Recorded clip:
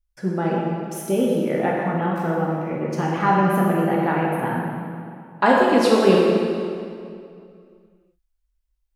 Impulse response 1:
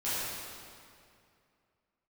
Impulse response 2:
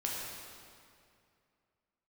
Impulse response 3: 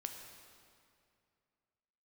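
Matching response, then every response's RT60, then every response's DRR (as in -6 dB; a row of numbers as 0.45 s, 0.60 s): 2; 2.4 s, 2.4 s, 2.4 s; -13.0 dB, -4.0 dB, 4.0 dB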